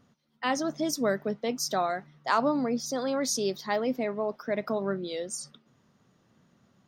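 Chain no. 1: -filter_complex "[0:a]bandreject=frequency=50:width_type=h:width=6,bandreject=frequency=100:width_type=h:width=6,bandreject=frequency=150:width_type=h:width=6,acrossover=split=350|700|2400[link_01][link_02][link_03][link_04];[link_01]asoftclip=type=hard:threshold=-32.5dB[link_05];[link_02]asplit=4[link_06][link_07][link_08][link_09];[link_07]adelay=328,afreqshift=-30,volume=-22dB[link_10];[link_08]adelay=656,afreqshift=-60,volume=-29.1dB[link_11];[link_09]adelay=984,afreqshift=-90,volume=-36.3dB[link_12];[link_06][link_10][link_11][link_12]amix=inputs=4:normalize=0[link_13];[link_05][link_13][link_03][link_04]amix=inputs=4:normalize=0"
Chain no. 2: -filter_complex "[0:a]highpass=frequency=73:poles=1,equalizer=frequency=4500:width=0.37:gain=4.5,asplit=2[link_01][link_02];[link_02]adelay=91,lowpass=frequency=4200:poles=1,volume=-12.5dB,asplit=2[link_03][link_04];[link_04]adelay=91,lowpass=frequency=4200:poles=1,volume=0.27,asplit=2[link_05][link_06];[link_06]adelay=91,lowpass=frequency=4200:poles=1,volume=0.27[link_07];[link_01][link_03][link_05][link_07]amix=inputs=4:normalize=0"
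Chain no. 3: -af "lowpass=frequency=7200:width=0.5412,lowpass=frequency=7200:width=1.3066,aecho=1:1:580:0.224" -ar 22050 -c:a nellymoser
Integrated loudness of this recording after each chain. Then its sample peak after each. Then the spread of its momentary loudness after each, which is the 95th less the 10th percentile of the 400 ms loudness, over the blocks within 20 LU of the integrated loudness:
−30.0, −28.5, −30.0 LKFS; −12.5, −10.5, −11.5 dBFS; 6, 7, 9 LU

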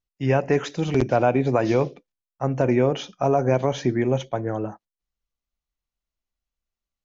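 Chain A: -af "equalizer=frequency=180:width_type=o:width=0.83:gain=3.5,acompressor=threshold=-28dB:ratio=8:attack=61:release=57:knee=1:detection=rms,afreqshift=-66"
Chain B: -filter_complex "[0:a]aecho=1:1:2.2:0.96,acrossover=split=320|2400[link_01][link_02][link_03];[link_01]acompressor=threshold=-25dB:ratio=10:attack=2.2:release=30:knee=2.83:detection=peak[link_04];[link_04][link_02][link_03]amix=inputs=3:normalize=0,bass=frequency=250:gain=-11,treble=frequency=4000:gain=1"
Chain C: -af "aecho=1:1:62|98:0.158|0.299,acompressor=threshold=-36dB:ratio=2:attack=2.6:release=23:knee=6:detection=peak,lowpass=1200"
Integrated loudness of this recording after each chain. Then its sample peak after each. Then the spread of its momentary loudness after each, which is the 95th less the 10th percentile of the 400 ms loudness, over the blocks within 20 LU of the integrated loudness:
−29.5, −22.5, −32.5 LKFS; −13.5, −8.0, −19.5 dBFS; 5, 8, 6 LU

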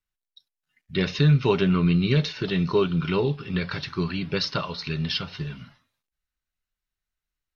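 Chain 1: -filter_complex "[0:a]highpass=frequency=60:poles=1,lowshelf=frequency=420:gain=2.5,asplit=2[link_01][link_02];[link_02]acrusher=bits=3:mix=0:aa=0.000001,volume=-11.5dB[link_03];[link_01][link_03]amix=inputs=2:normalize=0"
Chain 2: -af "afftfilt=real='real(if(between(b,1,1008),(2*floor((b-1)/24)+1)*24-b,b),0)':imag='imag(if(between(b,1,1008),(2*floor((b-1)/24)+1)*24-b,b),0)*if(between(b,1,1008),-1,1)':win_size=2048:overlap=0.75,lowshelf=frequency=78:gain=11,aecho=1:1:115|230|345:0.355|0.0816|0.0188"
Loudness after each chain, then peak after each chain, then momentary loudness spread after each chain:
−21.0, −23.0 LKFS; −5.0, −6.5 dBFS; 11, 10 LU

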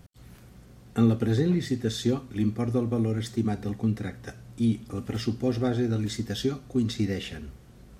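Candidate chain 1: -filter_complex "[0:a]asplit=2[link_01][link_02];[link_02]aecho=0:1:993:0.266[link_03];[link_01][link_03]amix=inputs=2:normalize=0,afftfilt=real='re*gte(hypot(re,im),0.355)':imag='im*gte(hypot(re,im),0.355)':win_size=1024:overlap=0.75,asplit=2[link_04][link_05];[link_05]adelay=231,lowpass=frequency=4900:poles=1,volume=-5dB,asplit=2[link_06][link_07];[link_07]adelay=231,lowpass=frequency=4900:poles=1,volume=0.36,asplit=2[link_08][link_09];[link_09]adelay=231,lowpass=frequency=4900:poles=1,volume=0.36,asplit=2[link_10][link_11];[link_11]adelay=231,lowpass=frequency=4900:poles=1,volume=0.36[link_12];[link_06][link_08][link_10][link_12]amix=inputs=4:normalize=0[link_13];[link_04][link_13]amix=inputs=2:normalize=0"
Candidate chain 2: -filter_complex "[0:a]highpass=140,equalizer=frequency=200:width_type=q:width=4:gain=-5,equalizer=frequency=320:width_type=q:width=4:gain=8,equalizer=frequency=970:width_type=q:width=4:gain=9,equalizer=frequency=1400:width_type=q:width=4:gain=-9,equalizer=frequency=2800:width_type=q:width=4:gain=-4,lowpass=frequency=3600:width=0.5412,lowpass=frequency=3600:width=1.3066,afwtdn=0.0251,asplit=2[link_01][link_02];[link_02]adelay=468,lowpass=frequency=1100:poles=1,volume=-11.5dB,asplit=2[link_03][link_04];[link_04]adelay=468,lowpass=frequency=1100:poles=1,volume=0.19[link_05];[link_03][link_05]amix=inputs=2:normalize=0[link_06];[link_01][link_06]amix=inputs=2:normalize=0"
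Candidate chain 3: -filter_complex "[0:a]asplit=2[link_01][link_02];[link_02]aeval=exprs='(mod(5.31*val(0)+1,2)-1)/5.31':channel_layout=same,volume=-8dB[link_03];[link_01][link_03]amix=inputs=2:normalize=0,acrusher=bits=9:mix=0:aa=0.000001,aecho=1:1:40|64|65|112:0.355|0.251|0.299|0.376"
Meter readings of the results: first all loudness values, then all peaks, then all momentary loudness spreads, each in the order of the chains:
−28.5, −27.5, −24.0 LKFS; −12.0, −12.0, −8.5 dBFS; 11, 12, 9 LU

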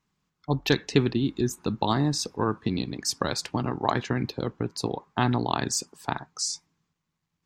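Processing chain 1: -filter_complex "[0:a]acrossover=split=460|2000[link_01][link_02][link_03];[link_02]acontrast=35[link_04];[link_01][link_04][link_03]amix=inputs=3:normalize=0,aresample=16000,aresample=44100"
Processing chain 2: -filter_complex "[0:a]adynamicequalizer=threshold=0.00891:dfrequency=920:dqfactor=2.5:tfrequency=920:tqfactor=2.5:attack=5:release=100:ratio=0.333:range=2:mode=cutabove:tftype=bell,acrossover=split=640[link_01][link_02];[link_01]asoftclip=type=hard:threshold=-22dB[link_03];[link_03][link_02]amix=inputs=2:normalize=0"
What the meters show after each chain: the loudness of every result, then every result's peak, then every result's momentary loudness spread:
−26.0, −29.0 LKFS; −2.5, −8.0 dBFS; 8, 7 LU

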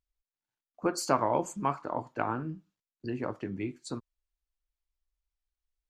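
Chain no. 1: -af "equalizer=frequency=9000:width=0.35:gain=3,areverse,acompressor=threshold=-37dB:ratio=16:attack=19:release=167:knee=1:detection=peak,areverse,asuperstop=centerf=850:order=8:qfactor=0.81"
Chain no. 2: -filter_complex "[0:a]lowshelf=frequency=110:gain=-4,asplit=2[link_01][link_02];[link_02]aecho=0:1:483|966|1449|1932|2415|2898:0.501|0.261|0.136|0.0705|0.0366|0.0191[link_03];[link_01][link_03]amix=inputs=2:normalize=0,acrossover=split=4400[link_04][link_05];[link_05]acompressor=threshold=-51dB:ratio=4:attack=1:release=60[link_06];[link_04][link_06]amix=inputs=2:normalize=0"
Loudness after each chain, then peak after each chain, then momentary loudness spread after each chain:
−43.5, −33.0 LKFS; −28.5, −10.5 dBFS; 7, 18 LU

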